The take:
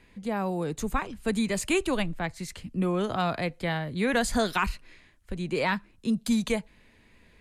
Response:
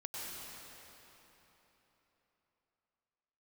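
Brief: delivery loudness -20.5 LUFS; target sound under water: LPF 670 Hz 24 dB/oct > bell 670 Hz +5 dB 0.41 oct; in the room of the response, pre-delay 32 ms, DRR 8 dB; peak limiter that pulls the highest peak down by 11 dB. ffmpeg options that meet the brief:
-filter_complex "[0:a]alimiter=level_in=1.5dB:limit=-24dB:level=0:latency=1,volume=-1.5dB,asplit=2[a][b];[1:a]atrim=start_sample=2205,adelay=32[c];[b][c]afir=irnorm=-1:irlink=0,volume=-9dB[d];[a][d]amix=inputs=2:normalize=0,lowpass=f=670:w=0.5412,lowpass=f=670:w=1.3066,equalizer=f=670:t=o:w=0.41:g=5,volume=15dB"

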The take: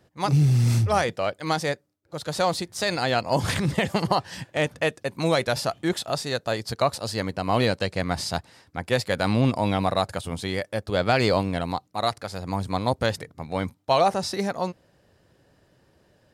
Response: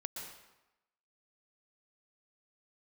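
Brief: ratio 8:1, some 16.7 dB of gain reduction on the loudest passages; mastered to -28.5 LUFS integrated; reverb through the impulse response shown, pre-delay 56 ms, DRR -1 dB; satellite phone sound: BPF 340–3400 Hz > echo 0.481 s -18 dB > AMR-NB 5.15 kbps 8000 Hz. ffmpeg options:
-filter_complex "[0:a]acompressor=threshold=-34dB:ratio=8,asplit=2[a][b];[1:a]atrim=start_sample=2205,adelay=56[c];[b][c]afir=irnorm=-1:irlink=0,volume=2dB[d];[a][d]amix=inputs=2:normalize=0,highpass=340,lowpass=3.4k,aecho=1:1:481:0.126,volume=12dB" -ar 8000 -c:a libopencore_amrnb -b:a 5150

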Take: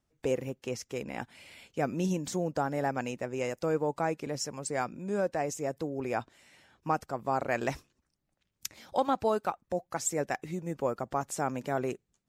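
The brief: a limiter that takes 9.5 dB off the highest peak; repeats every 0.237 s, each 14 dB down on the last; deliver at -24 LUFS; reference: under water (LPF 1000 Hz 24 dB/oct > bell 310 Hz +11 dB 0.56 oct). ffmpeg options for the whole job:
-af "alimiter=limit=-23dB:level=0:latency=1,lowpass=f=1k:w=0.5412,lowpass=f=1k:w=1.3066,equalizer=f=310:t=o:w=0.56:g=11,aecho=1:1:237|474:0.2|0.0399,volume=8dB"

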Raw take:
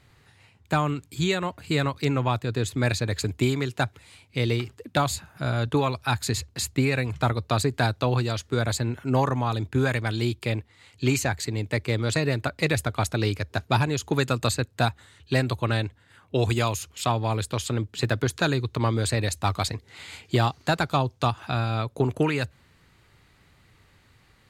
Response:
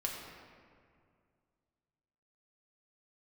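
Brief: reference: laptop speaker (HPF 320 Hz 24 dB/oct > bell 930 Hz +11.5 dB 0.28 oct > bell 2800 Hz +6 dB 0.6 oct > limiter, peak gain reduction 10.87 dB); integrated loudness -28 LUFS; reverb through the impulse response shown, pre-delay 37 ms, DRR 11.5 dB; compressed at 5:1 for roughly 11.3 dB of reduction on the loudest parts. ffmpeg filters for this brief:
-filter_complex "[0:a]acompressor=threshold=-31dB:ratio=5,asplit=2[a][b];[1:a]atrim=start_sample=2205,adelay=37[c];[b][c]afir=irnorm=-1:irlink=0,volume=-14dB[d];[a][d]amix=inputs=2:normalize=0,highpass=f=320:w=0.5412,highpass=f=320:w=1.3066,equalizer=f=930:t=o:w=0.28:g=11.5,equalizer=f=2.8k:t=o:w=0.6:g=6,volume=9.5dB,alimiter=limit=-15dB:level=0:latency=1"

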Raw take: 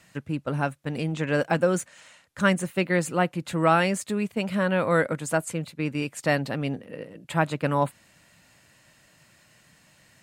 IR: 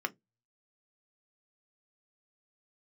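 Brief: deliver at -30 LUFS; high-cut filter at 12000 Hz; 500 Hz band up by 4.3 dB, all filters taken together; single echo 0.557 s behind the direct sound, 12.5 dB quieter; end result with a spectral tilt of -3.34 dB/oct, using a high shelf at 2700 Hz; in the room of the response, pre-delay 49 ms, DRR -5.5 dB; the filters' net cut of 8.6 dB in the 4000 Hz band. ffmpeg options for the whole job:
-filter_complex "[0:a]lowpass=12k,equalizer=f=500:t=o:g=5.5,highshelf=f=2.7k:g=-8.5,equalizer=f=4k:t=o:g=-6,aecho=1:1:557:0.237,asplit=2[a][b];[1:a]atrim=start_sample=2205,adelay=49[c];[b][c]afir=irnorm=-1:irlink=0,volume=1dB[d];[a][d]amix=inputs=2:normalize=0,volume=-10.5dB"

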